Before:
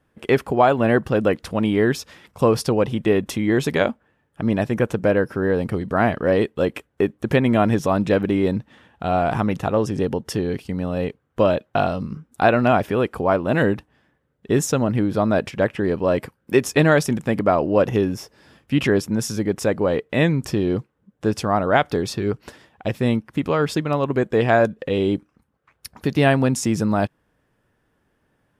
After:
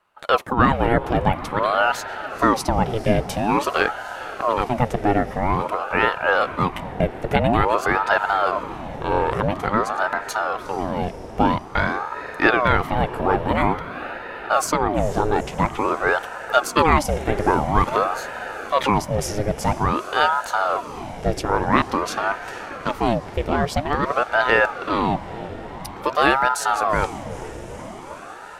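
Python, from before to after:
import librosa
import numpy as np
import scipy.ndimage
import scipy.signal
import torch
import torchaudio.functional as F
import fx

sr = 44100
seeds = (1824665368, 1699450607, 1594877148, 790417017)

y = fx.echo_diffused(x, sr, ms=452, feedback_pct=75, wet_db=-14.5)
y = fx.ring_lfo(y, sr, carrier_hz=670.0, swing_pct=70, hz=0.49)
y = y * 10.0 ** (2.0 / 20.0)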